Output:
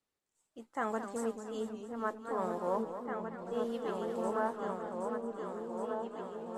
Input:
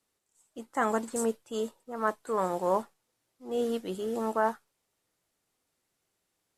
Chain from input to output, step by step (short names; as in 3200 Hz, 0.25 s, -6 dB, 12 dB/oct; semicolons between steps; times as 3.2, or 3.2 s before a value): high shelf 7800 Hz -10.5 dB; on a send: repeats that get brighter 0.769 s, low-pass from 200 Hz, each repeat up 2 oct, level 0 dB; on the sum: warbling echo 0.223 s, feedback 60%, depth 143 cents, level -10 dB; gain -7 dB